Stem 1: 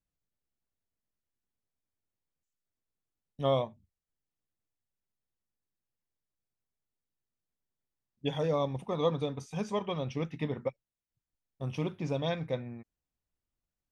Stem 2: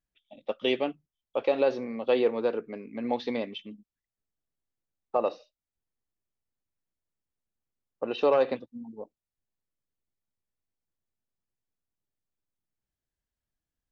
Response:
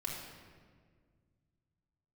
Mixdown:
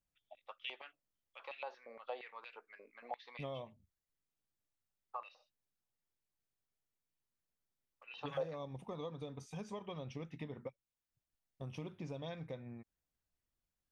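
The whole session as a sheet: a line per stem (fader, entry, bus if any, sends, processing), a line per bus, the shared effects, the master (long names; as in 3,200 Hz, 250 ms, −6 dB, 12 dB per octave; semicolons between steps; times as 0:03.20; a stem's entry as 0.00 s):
−2.0 dB, 0.00 s, no send, downward compressor 3 to 1, threshold −34 dBFS, peak gain reduction 9 dB
−13.0 dB, 0.00 s, no send, high-pass on a step sequencer 8.6 Hz 590–2,400 Hz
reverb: not used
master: downward compressor 1.5 to 1, threshold −52 dBFS, peak gain reduction 10 dB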